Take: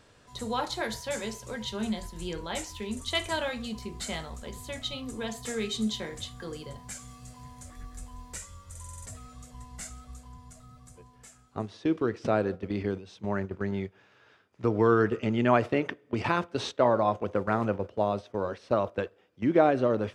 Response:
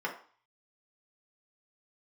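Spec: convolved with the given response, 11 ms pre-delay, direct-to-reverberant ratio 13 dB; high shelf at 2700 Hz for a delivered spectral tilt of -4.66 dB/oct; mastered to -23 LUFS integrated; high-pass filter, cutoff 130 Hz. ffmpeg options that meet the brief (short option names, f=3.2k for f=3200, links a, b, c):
-filter_complex "[0:a]highpass=130,highshelf=f=2.7k:g=-6.5,asplit=2[a][b];[1:a]atrim=start_sample=2205,adelay=11[c];[b][c]afir=irnorm=-1:irlink=0,volume=-19.5dB[d];[a][d]amix=inputs=2:normalize=0,volume=7.5dB"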